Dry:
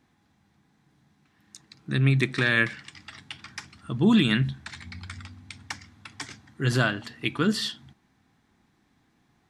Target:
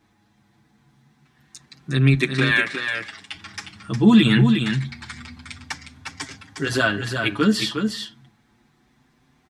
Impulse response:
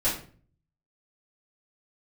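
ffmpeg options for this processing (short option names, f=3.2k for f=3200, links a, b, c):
-filter_complex "[0:a]asettb=1/sr,asplit=3[a][b][c];[a]atrim=end=2.144[d];[b]atrim=start=2.14:end=3.35,asetpts=PTS-STARTPTS,afade=t=in:d=0.004:c=qsin,afade=t=out:st=1.206:d=0.004:c=qsin,highpass=f=280:p=1[e];[c]atrim=start=3.346[f];[d][e]acrossfade=d=0.004:c1=hsin:c2=qsin[g];[g][f]acrossfade=d=0.004:c1=qsin:c2=hsin,aecho=1:1:359:0.501,asplit=2[h][i];[i]adelay=6.7,afreqshift=0.26[j];[h][j]amix=inputs=2:normalize=1,volume=7.5dB"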